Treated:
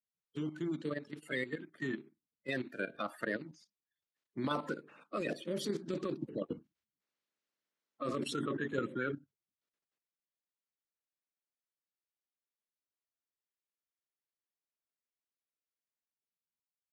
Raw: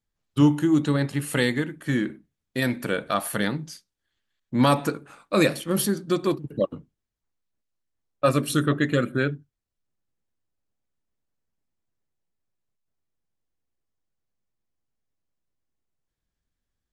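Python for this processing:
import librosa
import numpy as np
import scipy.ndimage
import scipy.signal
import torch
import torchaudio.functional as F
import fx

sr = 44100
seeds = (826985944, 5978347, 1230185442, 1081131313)

y = fx.spec_quant(x, sr, step_db=30)
y = fx.doppler_pass(y, sr, speed_mps=13, closest_m=19.0, pass_at_s=7.05)
y = fx.level_steps(y, sr, step_db=12)
y = scipy.signal.sosfilt(scipy.signal.butter(2, 200.0, 'highpass', fs=sr, output='sos'), y)
y = fx.peak_eq(y, sr, hz=920.0, db=-3.5, octaves=0.68)
y = fx.notch(y, sr, hz=740.0, q=13.0)
y = fx.over_compress(y, sr, threshold_db=-32.0, ratio=-1.0)
y = fx.air_absorb(y, sr, metres=100.0)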